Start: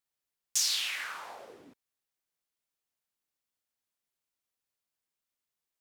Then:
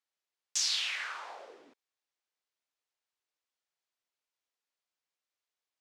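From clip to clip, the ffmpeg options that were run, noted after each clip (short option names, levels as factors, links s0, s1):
-filter_complex "[0:a]acrossover=split=310 7600:gain=0.0891 1 0.0794[s0][s1][s2];[s0][s1][s2]amix=inputs=3:normalize=0"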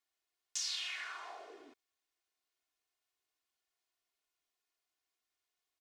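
-af "aecho=1:1:2.8:0.76,acompressor=threshold=0.00224:ratio=1.5"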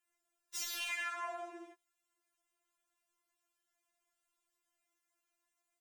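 -af "aeval=exprs='0.015*(abs(mod(val(0)/0.015+3,4)-2)-1)':c=same,afftfilt=real='re*4*eq(mod(b,16),0)':imag='im*4*eq(mod(b,16),0)':win_size=2048:overlap=0.75,volume=2"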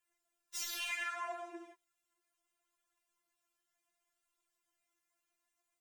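-af "flanger=delay=1.7:depth=7.2:regen=55:speed=0.7:shape=triangular,volume=1.58"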